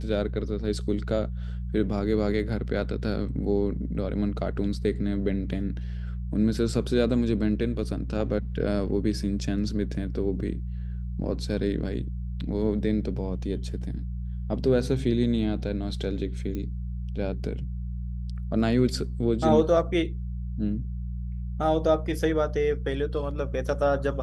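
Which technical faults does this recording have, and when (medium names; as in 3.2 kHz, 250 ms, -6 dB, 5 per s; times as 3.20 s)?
hum 60 Hz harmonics 3 -32 dBFS
16.55 s: pop -21 dBFS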